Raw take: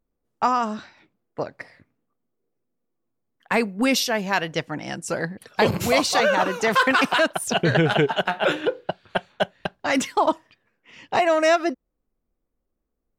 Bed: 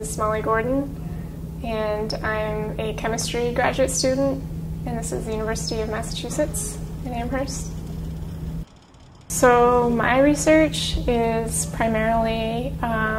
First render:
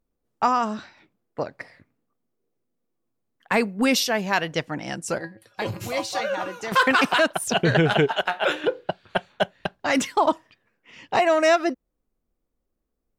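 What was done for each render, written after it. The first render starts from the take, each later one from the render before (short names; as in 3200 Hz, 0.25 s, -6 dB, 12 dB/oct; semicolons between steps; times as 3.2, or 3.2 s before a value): 5.18–6.72 resonator 110 Hz, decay 0.17 s, harmonics odd, mix 80%; 8.08–8.64 bell 160 Hz -12 dB 1.8 oct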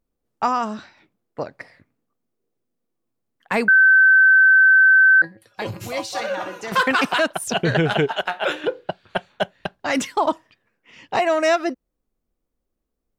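3.68–5.22 bleep 1540 Hz -9 dBFS; 6.06–6.82 flutter echo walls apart 10.6 m, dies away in 0.42 s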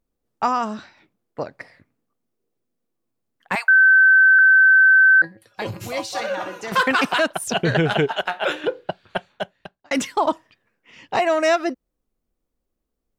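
3.55–4.39 steep high-pass 750 Hz 48 dB/oct; 9.03–9.91 fade out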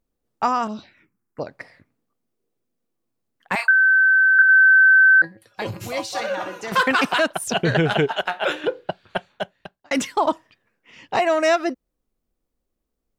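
0.67–1.47 envelope phaser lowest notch 530 Hz, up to 1800 Hz, full sweep at -28 dBFS; 3.56–4.49 doubler 29 ms -4 dB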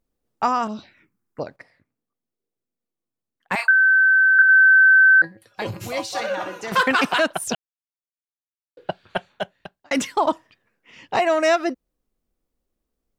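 1.56–3.58 upward expander, over -39 dBFS; 7.55–8.77 mute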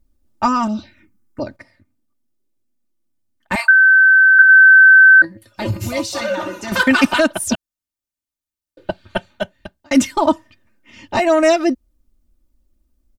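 tone controls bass +14 dB, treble +4 dB; comb 3.3 ms, depth 88%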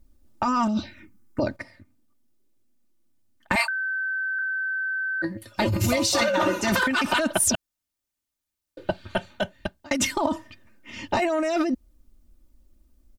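limiter -13.5 dBFS, peak gain reduction 12 dB; negative-ratio compressor -24 dBFS, ratio -1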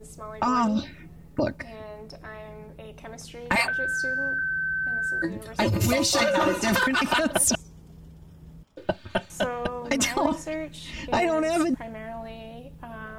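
add bed -16.5 dB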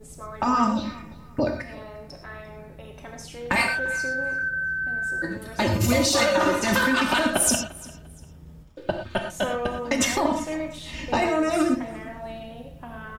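feedback echo 0.347 s, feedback 28%, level -21 dB; non-linear reverb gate 0.14 s flat, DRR 3.5 dB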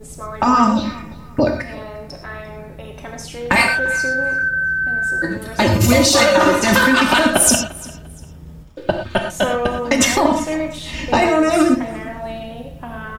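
gain +8 dB; limiter -1 dBFS, peak gain reduction 1 dB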